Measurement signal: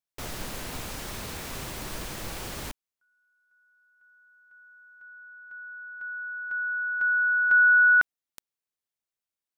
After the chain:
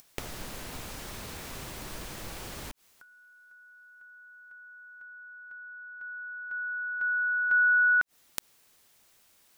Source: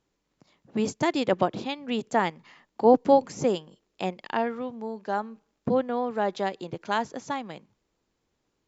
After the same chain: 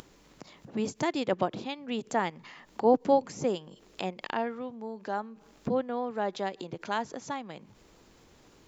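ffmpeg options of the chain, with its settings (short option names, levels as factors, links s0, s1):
-af "acompressor=mode=upward:threshold=0.00794:ratio=2.5:attack=76:release=47:knee=2.83:detection=peak,volume=0.596"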